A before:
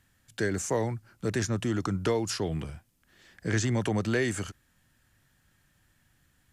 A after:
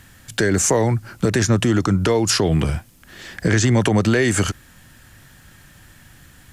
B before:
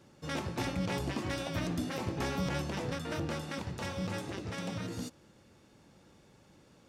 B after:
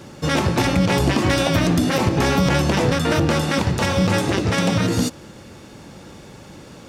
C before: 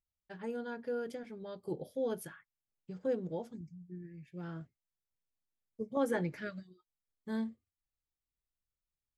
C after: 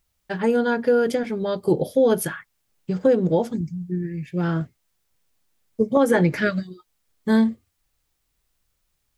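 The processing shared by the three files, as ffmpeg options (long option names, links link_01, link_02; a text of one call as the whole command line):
ffmpeg -i in.wav -af "acompressor=threshold=-33dB:ratio=6,alimiter=level_in=26.5dB:limit=-1dB:release=50:level=0:latency=1,volume=-6.5dB" out.wav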